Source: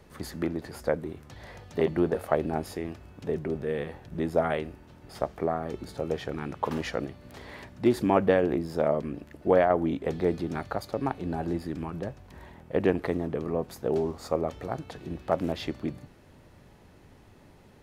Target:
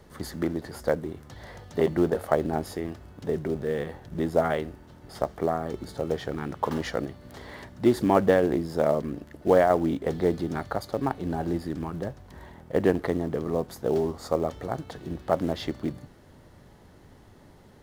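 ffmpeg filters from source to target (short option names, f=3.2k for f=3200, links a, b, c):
-filter_complex "[0:a]equalizer=f=2.5k:t=o:w=0.22:g=-9,asplit=2[a][b];[b]acrusher=bits=3:mode=log:mix=0:aa=0.000001,volume=-12dB[c];[a][c]amix=inputs=2:normalize=0"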